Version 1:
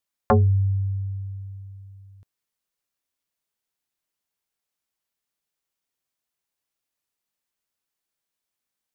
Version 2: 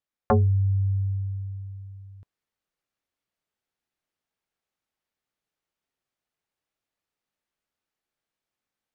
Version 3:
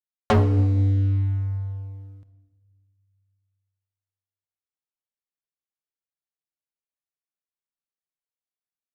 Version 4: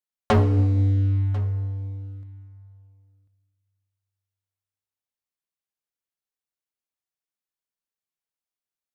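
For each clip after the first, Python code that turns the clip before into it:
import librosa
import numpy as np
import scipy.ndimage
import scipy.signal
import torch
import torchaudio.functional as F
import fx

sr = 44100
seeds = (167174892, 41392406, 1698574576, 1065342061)

y1 = fx.lowpass(x, sr, hz=2200.0, slope=6)
y1 = fx.notch(y1, sr, hz=1000.0, q=18.0)
y1 = fx.rider(y1, sr, range_db=3, speed_s=0.5)
y2 = fx.leveller(y1, sr, passes=3)
y2 = fx.room_shoebox(y2, sr, seeds[0], volume_m3=940.0, walls='mixed', distance_m=0.59)
y2 = fx.upward_expand(y2, sr, threshold_db=-38.0, expansion=1.5)
y3 = y2 + 10.0 ** (-20.5 / 20.0) * np.pad(y2, (int(1044 * sr / 1000.0), 0))[:len(y2)]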